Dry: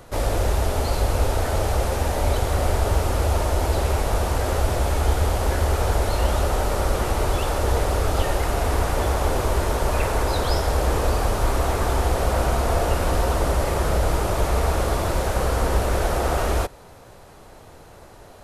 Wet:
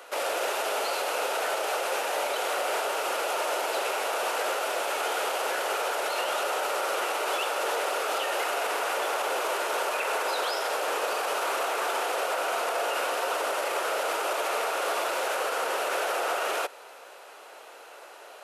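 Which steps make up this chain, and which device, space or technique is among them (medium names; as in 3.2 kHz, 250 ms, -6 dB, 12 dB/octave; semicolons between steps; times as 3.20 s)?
laptop speaker (high-pass 440 Hz 24 dB/octave; peaking EQ 1.4 kHz +6 dB 0.3 oct; peaking EQ 2.7 kHz +8 dB 0.55 oct; peak limiter -19.5 dBFS, peak gain reduction 8 dB)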